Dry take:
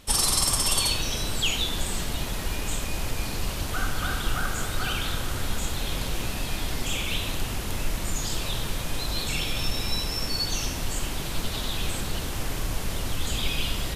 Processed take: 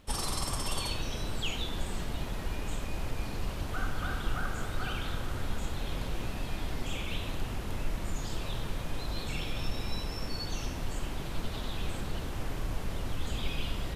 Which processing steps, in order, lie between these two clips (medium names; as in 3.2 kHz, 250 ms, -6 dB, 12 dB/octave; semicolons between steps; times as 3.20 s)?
peaking EQ 12 kHz -11 dB 2.8 oct; crackle 23 per s -46 dBFS; trim -4.5 dB